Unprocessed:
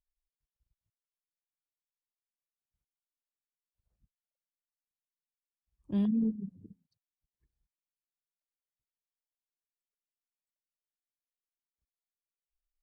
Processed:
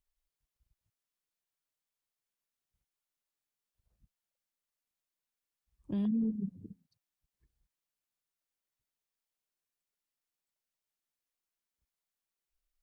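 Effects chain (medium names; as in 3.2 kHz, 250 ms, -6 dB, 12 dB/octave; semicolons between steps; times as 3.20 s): peak limiter -29.5 dBFS, peak gain reduction 8 dB; trim +3.5 dB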